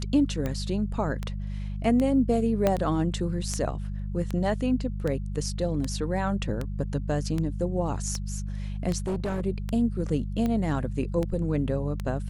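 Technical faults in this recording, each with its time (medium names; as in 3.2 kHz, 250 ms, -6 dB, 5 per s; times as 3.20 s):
hum 50 Hz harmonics 4 -32 dBFS
tick 78 rpm -17 dBFS
2.67 s: pop -10 dBFS
8.98–9.42 s: clipped -24.5 dBFS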